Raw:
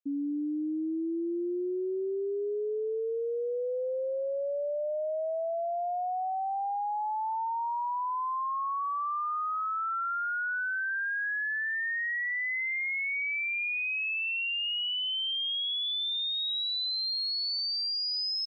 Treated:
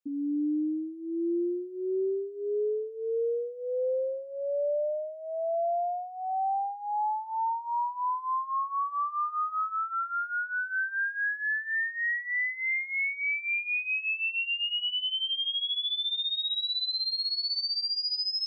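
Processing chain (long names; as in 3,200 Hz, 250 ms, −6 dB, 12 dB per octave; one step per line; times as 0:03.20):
chorus effect 0.14 Hz, delay 16.5 ms, depth 3 ms
0:09.76–0:10.67: tilt shelving filter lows +3.5 dB
level +4 dB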